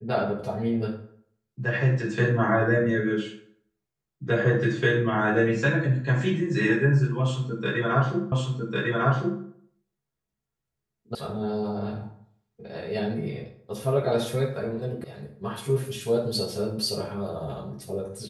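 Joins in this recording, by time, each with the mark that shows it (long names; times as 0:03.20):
0:08.32: the same again, the last 1.1 s
0:11.15: cut off before it has died away
0:15.04: cut off before it has died away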